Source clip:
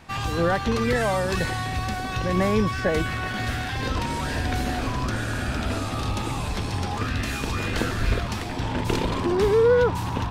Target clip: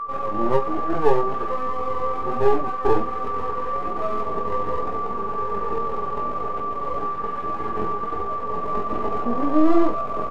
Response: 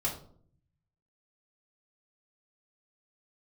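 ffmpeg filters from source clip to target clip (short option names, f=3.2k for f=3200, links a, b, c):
-filter_complex "[0:a]equalizer=f=610:t=o:w=0.32:g=9,aecho=1:1:6.5:0.54,acrossover=split=780[a][b];[a]acontrast=82[c];[c][b]amix=inputs=2:normalize=0,highpass=f=340:w=0.5412,highpass=f=340:w=1.3066,equalizer=f=440:t=q:w=4:g=-4,equalizer=f=690:t=q:w=4:g=5,equalizer=f=1k:t=q:w=4:g=4,equalizer=f=1.6k:t=q:w=4:g=-5,equalizer=f=2.8k:t=q:w=4:g=-10,lowpass=f=2.9k:w=0.5412,lowpass=f=2.9k:w=1.3066,aeval=exprs='max(val(0),0)':c=same,aeval=exprs='val(0)+0.0631*sin(2*PI*1700*n/s)':c=same,flanger=delay=16.5:depth=3.6:speed=1.2,aecho=1:1:29|46|59:0.141|0.133|0.133,asetrate=30296,aresample=44100,atempo=1.45565"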